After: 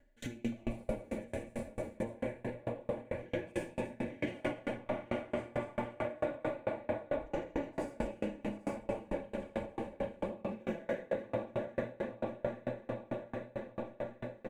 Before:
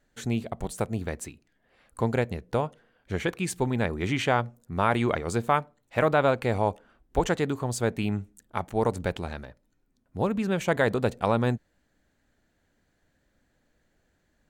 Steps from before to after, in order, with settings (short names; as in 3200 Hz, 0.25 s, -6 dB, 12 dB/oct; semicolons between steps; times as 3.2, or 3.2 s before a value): regenerating reverse delay 0.147 s, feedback 59%, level -1 dB; EQ curve 560 Hz 0 dB, 1400 Hz -11 dB, 5400 Hz -15 dB, 13000 Hz -10 dB; on a send: feedback echo 0.792 s, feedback 41%, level -5 dB; on the sum: digital reverb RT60 1.1 s, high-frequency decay 0.95×, pre-delay 35 ms, DRR -8.5 dB; compressor 5:1, threshold -36 dBFS, peak gain reduction 24 dB; Butterworth band-stop 1300 Hz, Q 6.5; bell 2200 Hz +11 dB 1.2 oct; comb 3.5 ms, depth 55%; dB-ramp tremolo decaying 4.5 Hz, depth 30 dB; gain +4 dB